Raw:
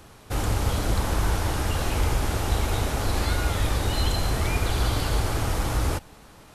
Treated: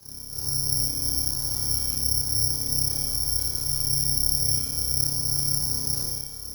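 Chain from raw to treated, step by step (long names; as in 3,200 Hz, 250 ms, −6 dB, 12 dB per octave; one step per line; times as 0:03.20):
low-shelf EQ 330 Hz +11.5 dB
reversed playback
downward compressor 10 to 1, threshold −23 dBFS, peak gain reduction 17 dB
reversed playback
frequency shifter +32 Hz
tuned comb filter 460 Hz, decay 0.58 s, mix 80%
amplitude modulation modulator 33 Hz, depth 50%
on a send: flutter between parallel walls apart 5 metres, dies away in 0.63 s
on the sum: four-comb reverb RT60 0.99 s, combs from 29 ms, DRR −5.5 dB
bad sample-rate conversion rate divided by 8×, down filtered, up zero stuff
level −1.5 dB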